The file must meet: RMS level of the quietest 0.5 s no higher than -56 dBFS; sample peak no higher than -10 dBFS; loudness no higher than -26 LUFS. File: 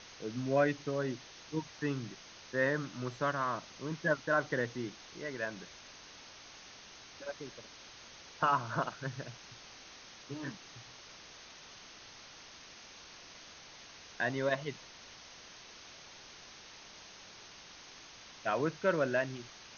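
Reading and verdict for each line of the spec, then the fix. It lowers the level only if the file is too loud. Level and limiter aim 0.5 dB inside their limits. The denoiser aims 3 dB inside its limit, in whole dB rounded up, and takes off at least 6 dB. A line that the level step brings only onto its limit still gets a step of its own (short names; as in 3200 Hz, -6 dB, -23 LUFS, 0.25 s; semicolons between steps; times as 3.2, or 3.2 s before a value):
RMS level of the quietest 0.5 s -53 dBFS: fail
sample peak -17.0 dBFS: OK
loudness -35.5 LUFS: OK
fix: denoiser 6 dB, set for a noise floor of -53 dBFS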